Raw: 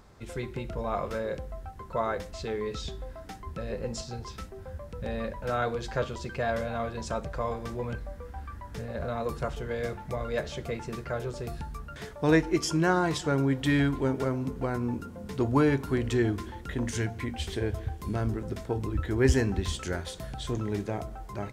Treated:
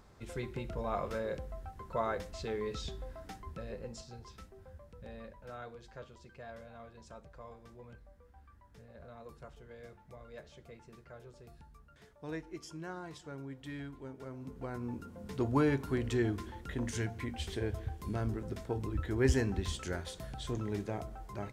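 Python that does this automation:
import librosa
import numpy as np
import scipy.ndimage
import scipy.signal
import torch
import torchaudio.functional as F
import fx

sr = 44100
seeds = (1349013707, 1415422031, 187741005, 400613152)

y = fx.gain(x, sr, db=fx.line((3.32, -4.5), (3.97, -11.5), (4.6, -11.5), (5.87, -19.0), (14.17, -19.0), (14.52, -12.0), (15.31, -5.5)))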